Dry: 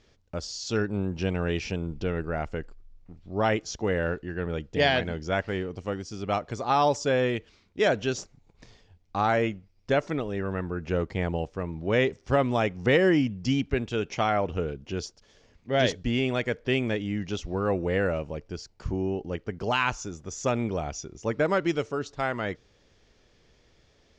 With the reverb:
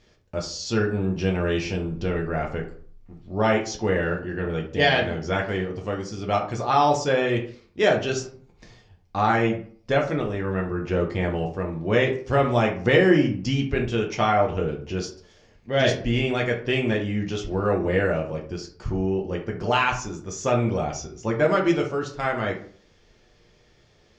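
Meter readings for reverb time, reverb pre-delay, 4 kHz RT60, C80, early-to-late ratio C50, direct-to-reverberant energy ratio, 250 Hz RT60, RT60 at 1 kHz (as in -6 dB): 0.50 s, 4 ms, 0.30 s, 14.0 dB, 9.5 dB, 0.0 dB, 0.50 s, 0.50 s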